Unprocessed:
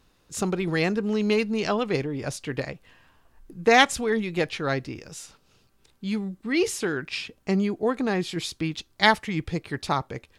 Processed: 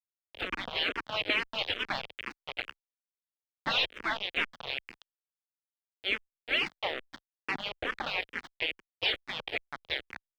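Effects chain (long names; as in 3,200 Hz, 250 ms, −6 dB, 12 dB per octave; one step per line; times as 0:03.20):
gate on every frequency bin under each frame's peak −20 dB weak
log-companded quantiser 2 bits
drawn EQ curve 110 Hz 0 dB, 500 Hz +6 dB, 1,100 Hz +1 dB, 3,200 Hz +6 dB, 7,100 Hz −22 dB, 11,000 Hz −28 dB
frequency shifter mixed with the dry sound −2.3 Hz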